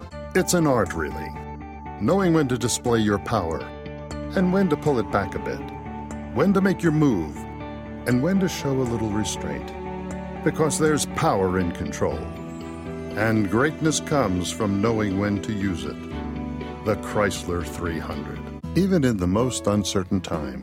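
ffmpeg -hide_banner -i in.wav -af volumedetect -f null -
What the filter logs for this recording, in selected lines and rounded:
mean_volume: -23.6 dB
max_volume: -7.7 dB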